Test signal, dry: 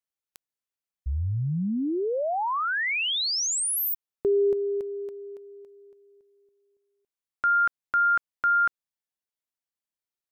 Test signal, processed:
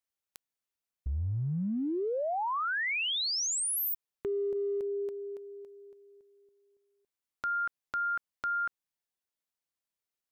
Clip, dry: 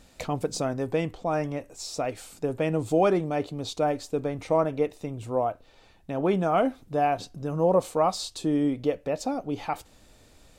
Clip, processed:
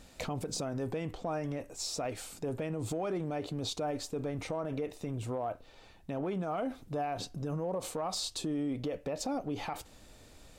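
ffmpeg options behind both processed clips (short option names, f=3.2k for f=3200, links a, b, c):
-af "acompressor=threshold=-29dB:ratio=12:attack=0.52:release=83:knee=1:detection=peak"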